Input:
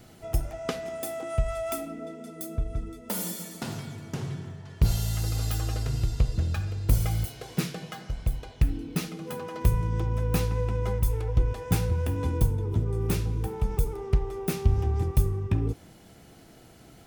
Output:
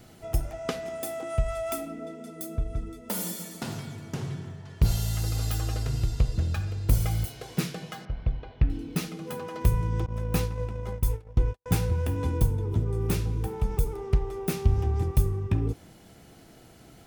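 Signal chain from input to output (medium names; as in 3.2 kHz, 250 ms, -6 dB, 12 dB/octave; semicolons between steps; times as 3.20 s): 8.05–8.70 s: Gaussian low-pass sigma 2.5 samples; 10.06–11.66 s: gate -25 dBFS, range -56 dB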